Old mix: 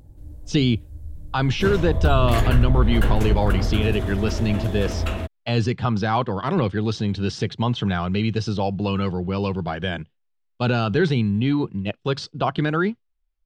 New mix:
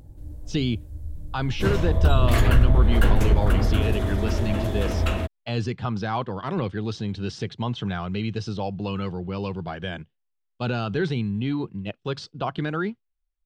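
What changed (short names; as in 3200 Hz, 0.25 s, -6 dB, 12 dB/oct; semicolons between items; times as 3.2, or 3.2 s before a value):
speech -5.5 dB; reverb: on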